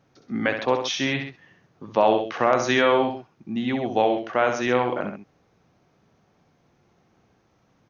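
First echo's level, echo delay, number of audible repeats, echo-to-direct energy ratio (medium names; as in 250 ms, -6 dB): -7.0 dB, 65 ms, 2, -6.0 dB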